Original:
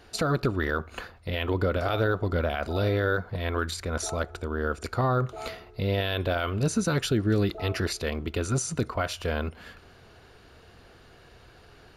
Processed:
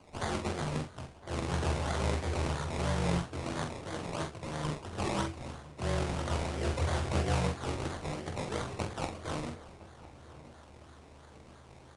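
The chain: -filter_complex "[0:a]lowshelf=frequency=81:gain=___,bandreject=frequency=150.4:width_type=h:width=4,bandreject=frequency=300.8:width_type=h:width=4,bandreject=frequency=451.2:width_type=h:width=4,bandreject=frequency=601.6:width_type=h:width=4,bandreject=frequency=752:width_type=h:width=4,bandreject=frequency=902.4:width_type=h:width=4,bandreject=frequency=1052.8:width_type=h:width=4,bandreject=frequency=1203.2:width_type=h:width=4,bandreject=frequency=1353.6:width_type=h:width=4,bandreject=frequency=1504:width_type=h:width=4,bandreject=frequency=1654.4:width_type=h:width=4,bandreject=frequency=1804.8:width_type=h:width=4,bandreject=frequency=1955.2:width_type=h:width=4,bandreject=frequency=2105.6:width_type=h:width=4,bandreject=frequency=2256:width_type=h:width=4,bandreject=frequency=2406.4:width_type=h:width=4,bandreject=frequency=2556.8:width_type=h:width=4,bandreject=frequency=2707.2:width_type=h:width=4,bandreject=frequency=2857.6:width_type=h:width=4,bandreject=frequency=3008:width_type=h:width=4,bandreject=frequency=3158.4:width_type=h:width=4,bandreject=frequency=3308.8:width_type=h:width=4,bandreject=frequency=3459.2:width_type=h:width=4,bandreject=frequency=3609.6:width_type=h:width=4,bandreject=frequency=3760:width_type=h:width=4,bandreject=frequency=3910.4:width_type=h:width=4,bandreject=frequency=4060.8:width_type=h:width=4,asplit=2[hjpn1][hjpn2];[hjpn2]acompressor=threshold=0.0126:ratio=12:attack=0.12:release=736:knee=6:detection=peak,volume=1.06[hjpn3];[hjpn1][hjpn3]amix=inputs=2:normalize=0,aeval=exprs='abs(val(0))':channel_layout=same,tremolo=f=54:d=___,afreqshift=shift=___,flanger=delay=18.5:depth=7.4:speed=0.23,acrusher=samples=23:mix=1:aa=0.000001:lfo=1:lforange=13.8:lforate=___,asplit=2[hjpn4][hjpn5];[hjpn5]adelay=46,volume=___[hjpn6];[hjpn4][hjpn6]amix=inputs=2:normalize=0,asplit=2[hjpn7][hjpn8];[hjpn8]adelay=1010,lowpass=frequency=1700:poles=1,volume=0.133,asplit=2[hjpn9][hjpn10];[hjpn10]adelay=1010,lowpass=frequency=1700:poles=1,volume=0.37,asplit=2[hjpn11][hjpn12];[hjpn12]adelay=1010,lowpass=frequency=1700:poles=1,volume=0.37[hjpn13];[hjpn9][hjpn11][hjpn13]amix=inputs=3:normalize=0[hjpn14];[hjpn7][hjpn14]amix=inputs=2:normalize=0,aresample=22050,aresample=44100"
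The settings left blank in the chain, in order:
-5, 0.519, 75, 3, 0.501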